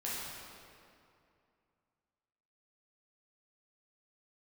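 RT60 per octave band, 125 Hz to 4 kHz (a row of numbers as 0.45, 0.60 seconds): 2.8, 2.7, 2.6, 2.5, 2.1, 1.7 seconds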